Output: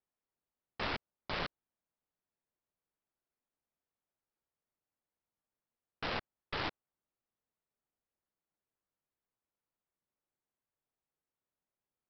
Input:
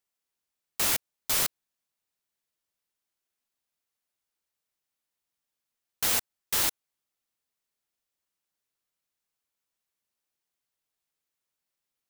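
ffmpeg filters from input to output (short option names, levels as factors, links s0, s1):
-af "adynamicsmooth=sensitivity=2:basefreq=1400,aresample=11025,aeval=exprs='clip(val(0),-1,0.0112)':c=same,aresample=44100,volume=1.12"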